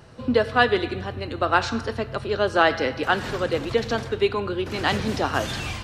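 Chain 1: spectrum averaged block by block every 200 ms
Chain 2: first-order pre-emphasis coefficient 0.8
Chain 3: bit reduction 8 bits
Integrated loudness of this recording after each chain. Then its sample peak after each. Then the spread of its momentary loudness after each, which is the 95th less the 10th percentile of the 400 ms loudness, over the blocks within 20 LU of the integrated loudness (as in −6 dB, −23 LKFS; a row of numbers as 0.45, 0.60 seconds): −27.5, −35.0, −23.5 LKFS; −8.5, −14.5, −3.5 dBFS; 8, 9, 9 LU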